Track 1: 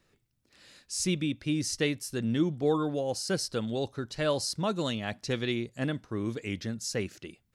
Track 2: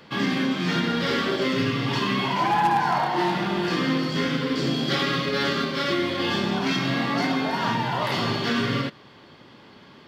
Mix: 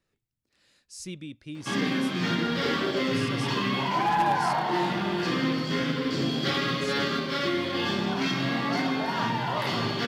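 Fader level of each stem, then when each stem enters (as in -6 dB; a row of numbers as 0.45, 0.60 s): -9.5, -3.0 dB; 0.00, 1.55 s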